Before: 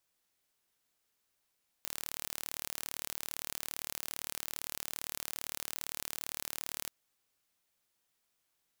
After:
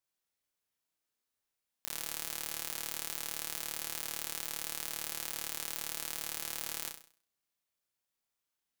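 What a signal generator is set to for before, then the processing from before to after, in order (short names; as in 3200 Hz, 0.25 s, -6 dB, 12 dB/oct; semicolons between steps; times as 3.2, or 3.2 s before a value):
pulse train 37.6/s, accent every 0, -11 dBFS 5.04 s
sample leveller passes 5; on a send: flutter echo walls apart 5.6 m, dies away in 0.45 s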